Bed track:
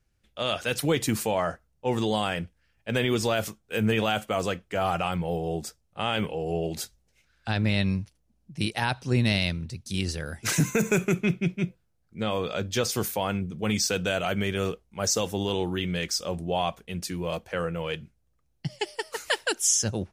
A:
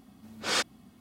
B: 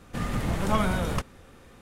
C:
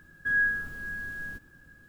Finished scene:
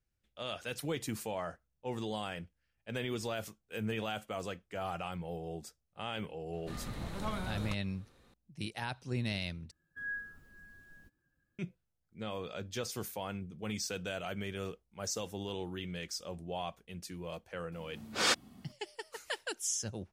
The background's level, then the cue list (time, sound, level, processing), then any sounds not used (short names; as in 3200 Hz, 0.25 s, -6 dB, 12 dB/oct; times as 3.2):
bed track -12 dB
6.53 add B -13 dB + bell 4000 Hz +11 dB 0.24 oct
9.71 replace with C -14 dB + per-bin expansion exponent 1.5
17.72 add A -1 dB